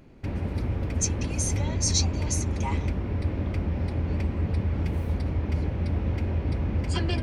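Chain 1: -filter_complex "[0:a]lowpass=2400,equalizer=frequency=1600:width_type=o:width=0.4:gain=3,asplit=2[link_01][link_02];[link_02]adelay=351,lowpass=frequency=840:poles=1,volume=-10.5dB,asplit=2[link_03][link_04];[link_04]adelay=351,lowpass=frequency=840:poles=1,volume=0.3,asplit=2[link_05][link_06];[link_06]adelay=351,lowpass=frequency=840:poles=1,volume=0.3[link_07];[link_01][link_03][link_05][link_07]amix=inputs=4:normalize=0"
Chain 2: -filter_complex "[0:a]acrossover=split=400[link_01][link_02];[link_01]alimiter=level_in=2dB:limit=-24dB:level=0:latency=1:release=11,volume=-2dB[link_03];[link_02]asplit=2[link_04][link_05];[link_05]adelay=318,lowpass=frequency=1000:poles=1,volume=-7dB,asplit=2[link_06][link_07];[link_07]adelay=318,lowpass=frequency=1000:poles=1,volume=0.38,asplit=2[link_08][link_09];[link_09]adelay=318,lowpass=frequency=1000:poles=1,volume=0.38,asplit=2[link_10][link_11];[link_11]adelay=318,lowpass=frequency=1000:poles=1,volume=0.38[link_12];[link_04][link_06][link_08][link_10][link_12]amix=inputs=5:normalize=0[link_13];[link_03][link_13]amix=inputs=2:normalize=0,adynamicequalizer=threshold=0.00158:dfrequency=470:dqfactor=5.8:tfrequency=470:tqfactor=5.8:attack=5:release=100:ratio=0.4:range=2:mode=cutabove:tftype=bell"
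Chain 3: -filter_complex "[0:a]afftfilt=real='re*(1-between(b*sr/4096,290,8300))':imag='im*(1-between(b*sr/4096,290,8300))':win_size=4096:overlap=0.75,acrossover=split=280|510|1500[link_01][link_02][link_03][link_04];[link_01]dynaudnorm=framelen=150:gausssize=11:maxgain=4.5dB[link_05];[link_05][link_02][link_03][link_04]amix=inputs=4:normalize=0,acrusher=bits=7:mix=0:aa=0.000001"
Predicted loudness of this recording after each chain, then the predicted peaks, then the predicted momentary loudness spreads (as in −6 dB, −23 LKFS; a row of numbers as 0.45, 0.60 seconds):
−28.5, −30.5, −25.0 LKFS; −15.0, −11.0, −12.0 dBFS; 2, 6, 5 LU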